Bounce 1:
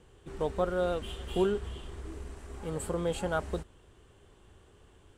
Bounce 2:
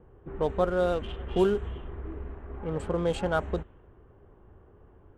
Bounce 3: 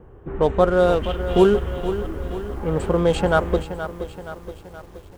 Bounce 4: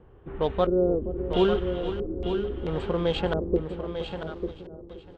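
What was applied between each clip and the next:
adaptive Wiener filter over 9 samples; low-pass that shuts in the quiet parts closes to 1,200 Hz, open at −24.5 dBFS; level +4 dB
feedback echo at a low word length 473 ms, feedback 55%, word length 9 bits, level −11 dB; level +9 dB
auto-filter low-pass square 0.75 Hz 380–3,600 Hz; single-tap delay 896 ms −8 dB; level −7.5 dB

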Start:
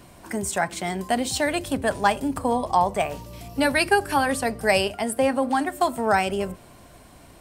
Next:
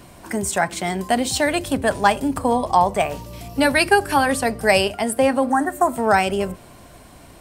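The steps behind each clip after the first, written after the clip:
healed spectral selection 0:05.51–0:05.90, 2,000–5,600 Hz before
level +4 dB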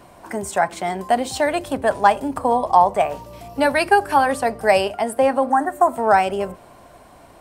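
parametric band 790 Hz +10 dB 2.2 octaves
level −7 dB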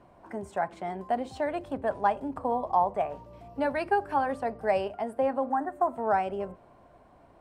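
low-pass filter 1,200 Hz 6 dB per octave
level −9 dB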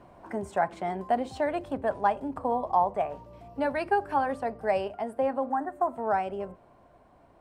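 speech leveller within 4 dB 2 s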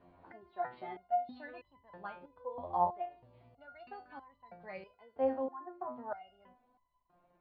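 Butterworth low-pass 4,600 Hz 96 dB per octave
step-sequenced resonator 3.1 Hz 88–1,000 Hz

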